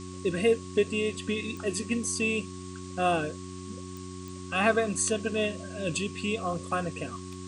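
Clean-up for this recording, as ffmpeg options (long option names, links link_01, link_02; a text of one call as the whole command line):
ffmpeg -i in.wav -af "adeclick=threshold=4,bandreject=frequency=92:width_type=h:width=4,bandreject=frequency=184:width_type=h:width=4,bandreject=frequency=276:width_type=h:width=4,bandreject=frequency=368:width_type=h:width=4,bandreject=frequency=1100:width=30,afftdn=noise_reduction=30:noise_floor=-41" out.wav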